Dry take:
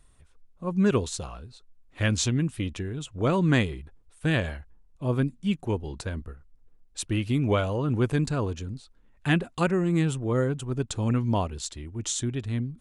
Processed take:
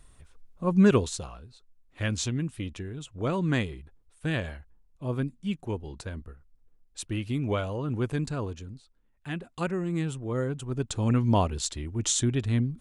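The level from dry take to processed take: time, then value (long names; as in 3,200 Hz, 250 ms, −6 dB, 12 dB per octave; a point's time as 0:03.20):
0:00.79 +4 dB
0:01.39 −4.5 dB
0:08.44 −4.5 dB
0:09.30 −12 dB
0:09.64 −5.5 dB
0:10.25 −5.5 dB
0:11.49 +3.5 dB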